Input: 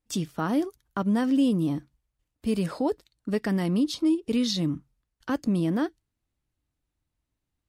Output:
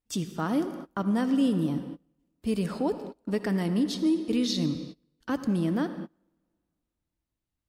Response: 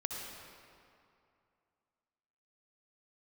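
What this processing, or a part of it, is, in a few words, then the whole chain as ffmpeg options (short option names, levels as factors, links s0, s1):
keyed gated reverb: -filter_complex "[0:a]asplit=3[s0][s1][s2];[1:a]atrim=start_sample=2205[s3];[s1][s3]afir=irnorm=-1:irlink=0[s4];[s2]apad=whole_len=338867[s5];[s4][s5]sidechaingate=range=0.0398:threshold=0.00316:ratio=16:detection=peak,volume=0.531[s6];[s0][s6]amix=inputs=2:normalize=0,volume=0.562"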